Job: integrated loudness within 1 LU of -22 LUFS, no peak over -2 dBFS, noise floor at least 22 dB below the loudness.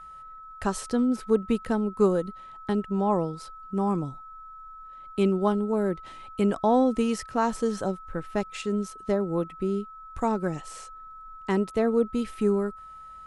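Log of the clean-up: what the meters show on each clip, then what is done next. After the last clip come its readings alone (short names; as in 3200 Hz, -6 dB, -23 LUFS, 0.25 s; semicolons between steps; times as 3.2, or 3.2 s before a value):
steady tone 1300 Hz; tone level -42 dBFS; loudness -27.0 LUFS; peak -10.0 dBFS; loudness target -22.0 LUFS
-> notch 1300 Hz, Q 30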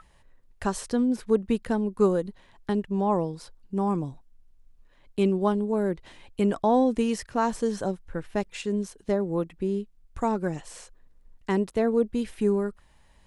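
steady tone none; loudness -27.0 LUFS; peak -10.5 dBFS; loudness target -22.0 LUFS
-> gain +5 dB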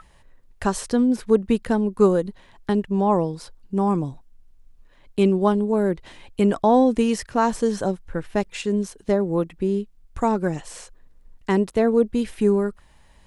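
loudness -22.0 LUFS; peak -5.5 dBFS; noise floor -54 dBFS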